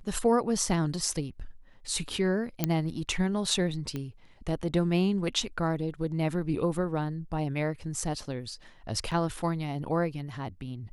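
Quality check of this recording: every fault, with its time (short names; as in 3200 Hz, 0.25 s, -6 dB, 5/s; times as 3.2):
2.64 pop -10 dBFS
3.96 pop -21 dBFS
9.11–9.12 gap 6.4 ms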